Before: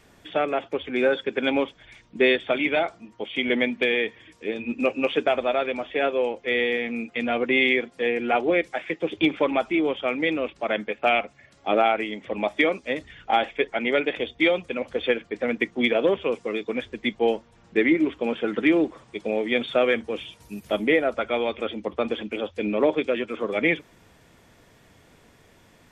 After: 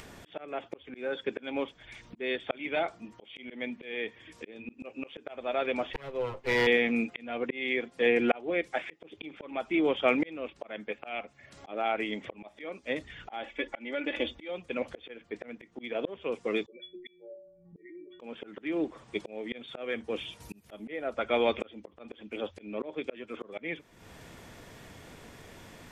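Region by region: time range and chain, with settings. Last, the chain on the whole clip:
5.93–6.67 minimum comb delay 7.7 ms + high shelf 2400 Hz -7.5 dB
13.44–14.49 comb 3.5 ms, depth 80% + compressor 2.5:1, threshold -22 dBFS
16.66–18.2 formant sharpening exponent 3 + metallic resonator 170 Hz, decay 0.69 s, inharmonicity 0.03
whole clip: auto swell 0.71 s; upward compressor, threshold -44 dBFS; gain +1.5 dB

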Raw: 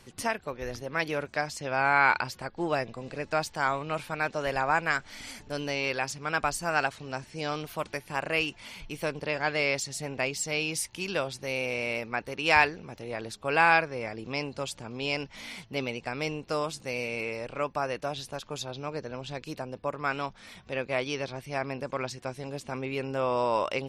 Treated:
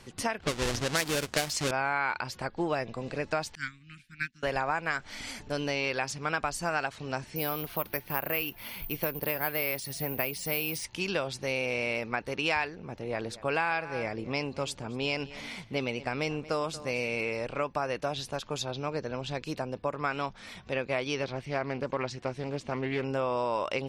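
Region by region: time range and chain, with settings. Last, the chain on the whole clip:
0.4–1.71 half-waves squared off + low-pass opened by the level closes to 3000 Hz, open at -23 dBFS + high shelf 2600 Hz +11 dB
3.55–4.43 elliptic band-stop 250–1700 Hz, stop band 60 dB + upward expander 2.5:1, over -50 dBFS
7.36–10.84 air absorption 83 m + careless resampling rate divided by 3×, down filtered, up zero stuff
12.75–17.03 echo 0.232 s -18.5 dB + mismatched tape noise reduction decoder only
21.23–23.04 air absorption 60 m + Doppler distortion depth 0.19 ms
whole clip: high shelf 12000 Hz -9 dB; compressor 5:1, threshold -29 dBFS; gain +3 dB

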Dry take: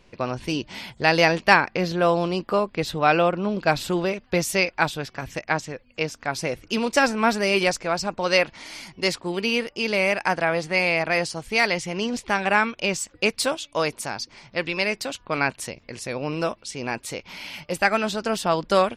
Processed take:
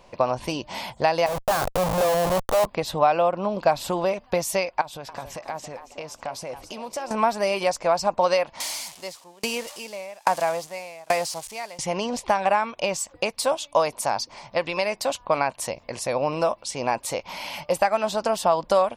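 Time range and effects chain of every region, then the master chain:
1.26–2.66 fixed phaser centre 1400 Hz, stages 8 + Schmitt trigger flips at -28 dBFS
4.81–7.11 notch 1800 Hz, Q 23 + compressor, threshold -36 dBFS + frequency-shifting echo 0.276 s, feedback 39%, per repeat +120 Hz, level -11.5 dB
8.6–11.79 switching spikes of -17.5 dBFS + LPF 8000 Hz + dB-ramp tremolo decaying 1.2 Hz, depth 31 dB
whole clip: high shelf 5900 Hz +7 dB; compressor 5:1, threshold -25 dBFS; band shelf 770 Hz +11 dB 1.3 oct

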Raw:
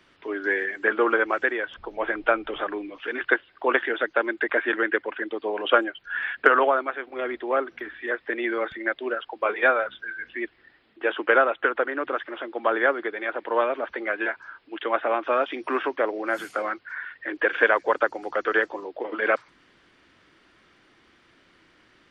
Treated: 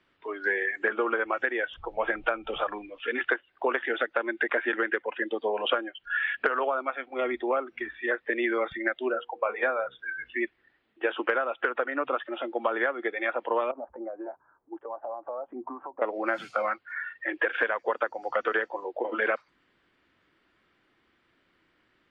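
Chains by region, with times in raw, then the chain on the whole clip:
9.11–9.99 high shelf 2500 Hz -11.5 dB + notches 60/120/180/240/300/360/420/480 Hz
13.71–16.02 Chebyshev low-pass 980 Hz, order 3 + compressor 10:1, threshold -33 dBFS
whole clip: spectral noise reduction 12 dB; LPF 4000 Hz 12 dB/oct; compressor 12:1, threshold -25 dBFS; gain +2.5 dB

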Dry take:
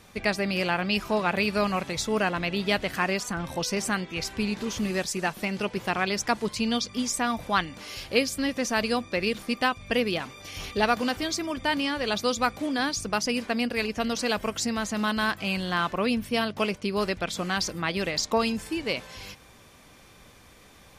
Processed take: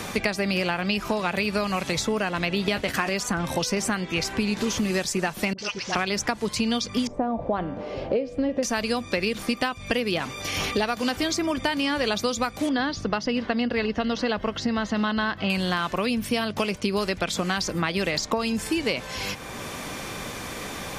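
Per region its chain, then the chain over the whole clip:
2.67–3.14 doubler 14 ms -11 dB + expander -31 dBFS + transient shaper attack +2 dB, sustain +7 dB
5.53–5.95 ladder low-pass 6400 Hz, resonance 65% + tilt shelf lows -7 dB, about 1200 Hz + dispersion highs, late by 55 ms, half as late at 730 Hz
7.07–8.63 synth low-pass 600 Hz, resonance Q 2.1 + de-hum 97.32 Hz, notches 37
12.69–15.5 air absorption 290 m + notch 2400 Hz, Q 7.1
whole clip: compressor, threshold -27 dBFS; bell 6800 Hz +2 dB; three-band squash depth 70%; gain +5.5 dB

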